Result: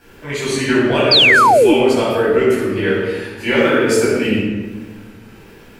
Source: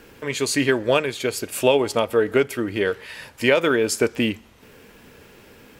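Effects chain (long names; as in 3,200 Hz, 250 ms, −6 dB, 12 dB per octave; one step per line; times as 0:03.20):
pitch shifter gated in a rhythm −1 semitone, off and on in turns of 449 ms
rectangular room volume 960 cubic metres, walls mixed, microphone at 8.1 metres
sound drawn into the spectrogram fall, 0:01.11–0:01.74, 280–5,000 Hz −1 dBFS
level −8.5 dB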